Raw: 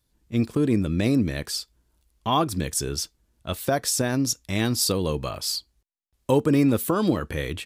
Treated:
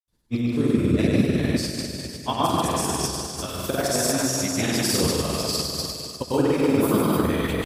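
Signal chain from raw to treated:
four-comb reverb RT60 2.9 s, combs from 26 ms, DRR −7.5 dB
granular cloud, pitch spread up and down by 0 semitones
harmonic and percussive parts rebalanced harmonic −9 dB

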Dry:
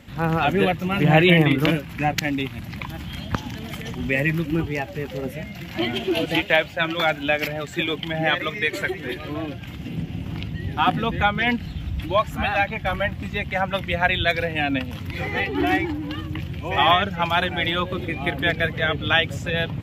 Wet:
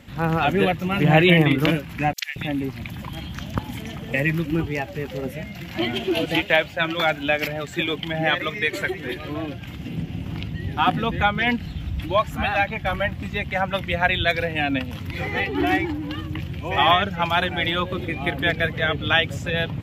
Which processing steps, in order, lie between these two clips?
0:02.13–0:04.14: three-band delay without the direct sound highs, mids, lows 40/230 ms, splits 1,600/4,800 Hz

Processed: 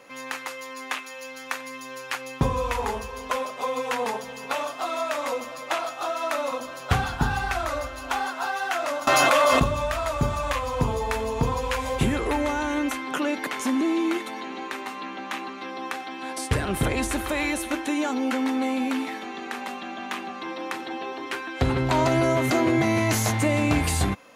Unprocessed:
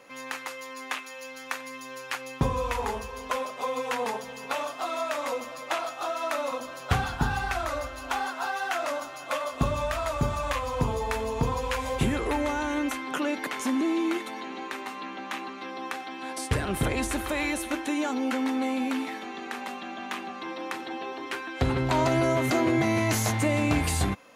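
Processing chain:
0:09.07–0:09.64: envelope flattener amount 100%
level +2.5 dB

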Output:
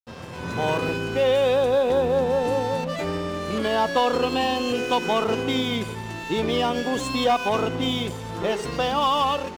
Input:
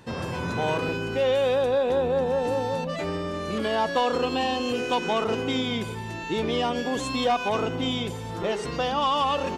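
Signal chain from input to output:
automatic gain control gain up to 7.5 dB
dead-zone distortion −36 dBFS
level −4 dB

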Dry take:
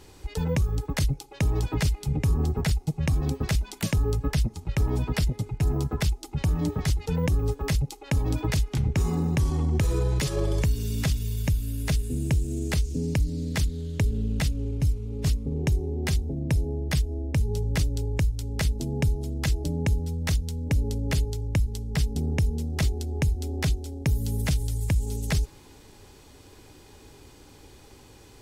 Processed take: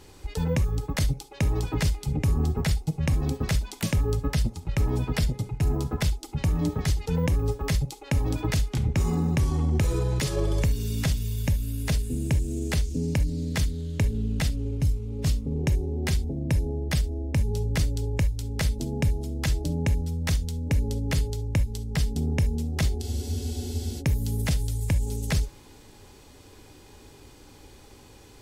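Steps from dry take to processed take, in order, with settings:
reverb whose tail is shaped and stops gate 90 ms flat, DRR 11.5 dB
frozen spectrum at 0:23.03, 0.97 s

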